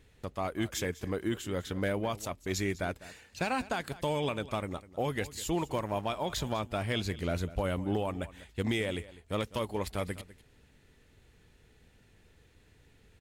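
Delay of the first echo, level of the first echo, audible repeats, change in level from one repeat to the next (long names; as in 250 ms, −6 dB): 201 ms, −17.5 dB, 1, repeats not evenly spaced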